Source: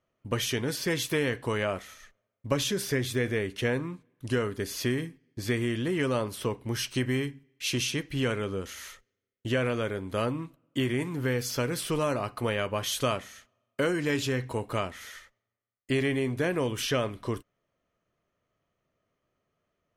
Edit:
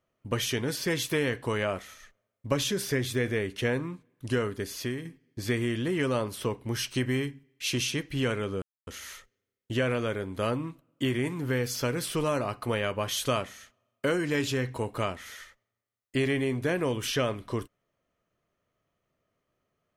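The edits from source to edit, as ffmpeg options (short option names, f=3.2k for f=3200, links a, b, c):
-filter_complex "[0:a]asplit=3[a][b][c];[a]atrim=end=5.05,asetpts=PTS-STARTPTS,afade=t=out:st=4.47:d=0.58:silence=0.446684[d];[b]atrim=start=5.05:end=8.62,asetpts=PTS-STARTPTS,afade=t=in:d=0.004:c=hsin:silence=0.446684,afade=t=out:st=3.566:d=0.004:c=hsin,apad=pad_dur=0.25[e];[c]atrim=start=8.62,asetpts=PTS-STARTPTS,afade=t=in:d=0.004:c=hsin[f];[d][e][f]concat=n=3:v=0:a=1"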